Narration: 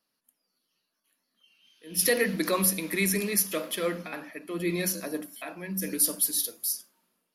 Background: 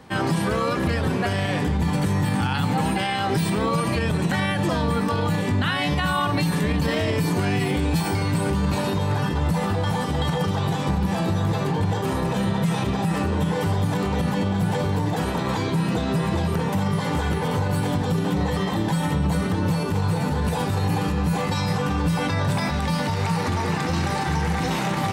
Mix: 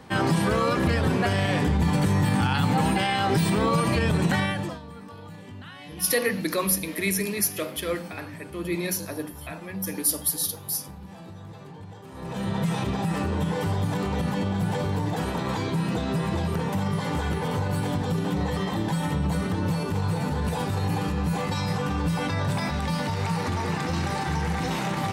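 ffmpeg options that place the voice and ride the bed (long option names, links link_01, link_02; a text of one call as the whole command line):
ffmpeg -i stem1.wav -i stem2.wav -filter_complex "[0:a]adelay=4050,volume=0.5dB[link_01];[1:a]volume=16dB,afade=type=out:start_time=4.33:duration=0.47:silence=0.105925,afade=type=in:start_time=12.12:duration=0.46:silence=0.158489[link_02];[link_01][link_02]amix=inputs=2:normalize=0" out.wav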